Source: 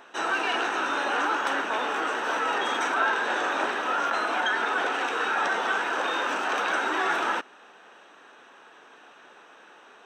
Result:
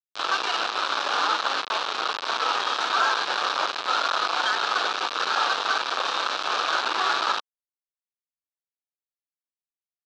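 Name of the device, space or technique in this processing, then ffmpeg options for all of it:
hand-held game console: -af "acrusher=bits=3:mix=0:aa=0.000001,highpass=460,equalizer=f=1.2k:t=q:w=4:g=7,equalizer=f=2k:t=q:w=4:g=-8,equalizer=f=3.9k:t=q:w=4:g=5,lowpass=f=5.2k:w=0.5412,lowpass=f=5.2k:w=1.3066"

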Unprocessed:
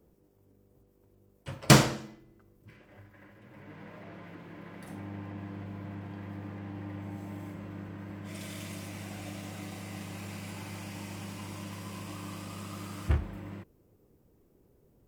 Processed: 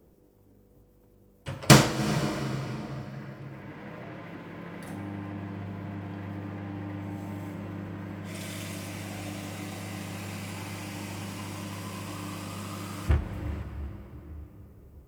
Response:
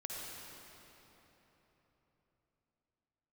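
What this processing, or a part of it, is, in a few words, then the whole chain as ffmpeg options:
ducked reverb: -filter_complex "[0:a]asplit=3[a][b][c];[1:a]atrim=start_sample=2205[d];[b][d]afir=irnorm=-1:irlink=0[e];[c]apad=whole_len=664753[f];[e][f]sidechaincompress=threshold=-43dB:ratio=8:attack=16:release=118,volume=-3.5dB[g];[a][g]amix=inputs=2:normalize=0,volume=2.5dB"

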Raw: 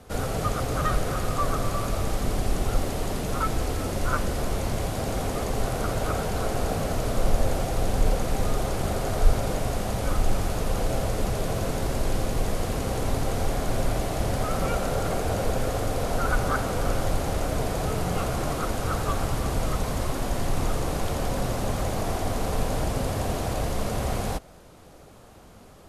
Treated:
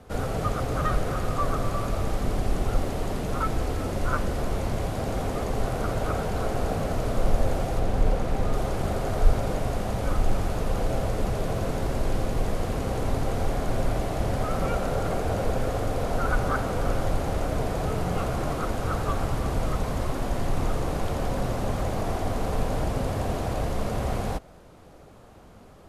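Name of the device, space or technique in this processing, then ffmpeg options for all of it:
behind a face mask: -filter_complex "[0:a]highshelf=f=3.4k:g=-7.5,asettb=1/sr,asplit=3[a][b][c];[a]atrim=end=7.794[d];[b]atrim=start=7.79:end=8.53,asetpts=PTS-STARTPTS,afade=t=in:d=0.004:c=qsin,afade=t=out:st=0.736:d=0.004:c=qsin,highshelf=f=5.3k:g=-6[e];[c]atrim=start=8.526[f];[d][e]acrossfade=d=0.004:c1=hsin:c2=qsin[g];[g][f]acrossfade=d=0.004:c1=qsin:c2=hsin"

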